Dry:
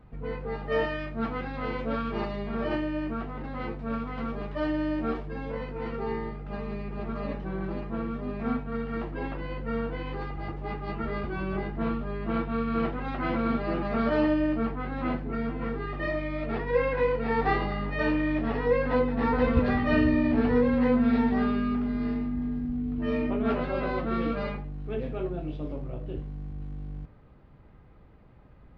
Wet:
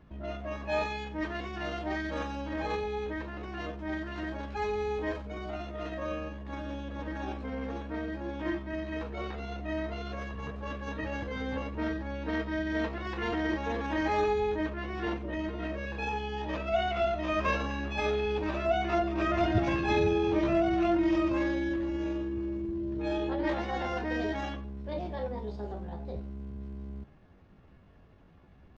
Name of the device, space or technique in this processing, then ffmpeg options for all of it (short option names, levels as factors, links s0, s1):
chipmunk voice: -af "asetrate=60591,aresample=44100,atempo=0.727827,volume=0.668"